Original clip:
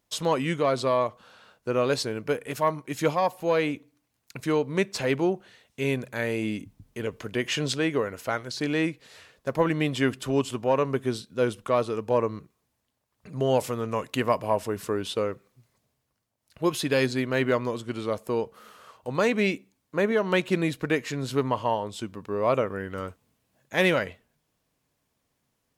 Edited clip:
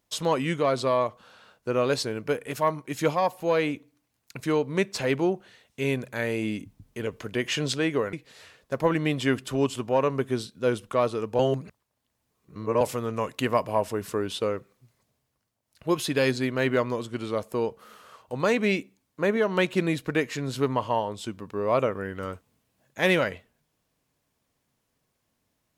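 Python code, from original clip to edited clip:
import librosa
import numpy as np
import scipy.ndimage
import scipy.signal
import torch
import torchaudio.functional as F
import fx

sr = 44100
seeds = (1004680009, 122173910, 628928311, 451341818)

y = fx.edit(x, sr, fx.cut(start_s=8.13, length_s=0.75),
    fx.reverse_span(start_s=12.14, length_s=1.42), tone=tone)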